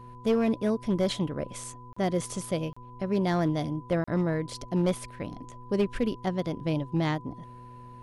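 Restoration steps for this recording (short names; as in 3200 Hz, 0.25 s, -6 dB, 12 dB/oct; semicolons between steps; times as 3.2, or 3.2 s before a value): clip repair -18.5 dBFS; de-hum 122.3 Hz, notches 4; notch 1000 Hz, Q 30; interpolate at 1.93/2.73/4.04, 35 ms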